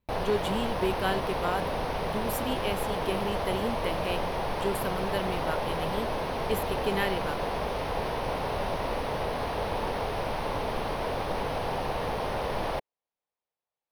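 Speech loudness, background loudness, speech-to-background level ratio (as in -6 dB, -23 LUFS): -33.5 LUFS, -31.5 LUFS, -2.0 dB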